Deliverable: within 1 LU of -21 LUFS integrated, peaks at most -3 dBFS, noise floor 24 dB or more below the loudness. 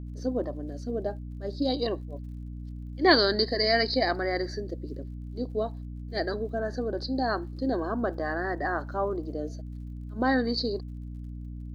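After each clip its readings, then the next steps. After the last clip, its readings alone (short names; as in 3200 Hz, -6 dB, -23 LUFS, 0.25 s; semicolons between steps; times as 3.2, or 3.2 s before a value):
ticks 44/s; hum 60 Hz; harmonics up to 300 Hz; hum level -36 dBFS; loudness -28.5 LUFS; peak -8.0 dBFS; loudness target -21.0 LUFS
-> de-click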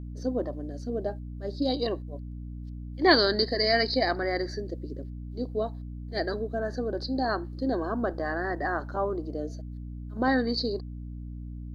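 ticks 0.085/s; hum 60 Hz; harmonics up to 300 Hz; hum level -36 dBFS
-> de-hum 60 Hz, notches 5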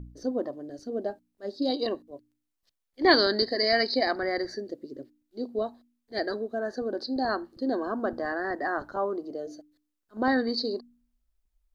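hum none; loudness -28.5 LUFS; peak -7.5 dBFS; loudness target -21.0 LUFS
-> gain +7.5 dB; limiter -3 dBFS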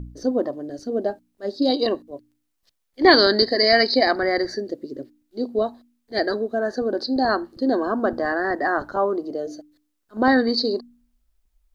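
loudness -21.5 LUFS; peak -3.0 dBFS; noise floor -74 dBFS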